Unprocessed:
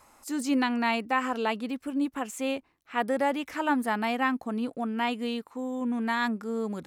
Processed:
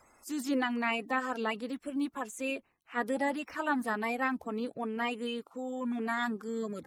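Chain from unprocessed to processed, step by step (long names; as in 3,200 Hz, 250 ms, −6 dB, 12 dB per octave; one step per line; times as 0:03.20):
spectral magnitudes quantised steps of 30 dB
level −4 dB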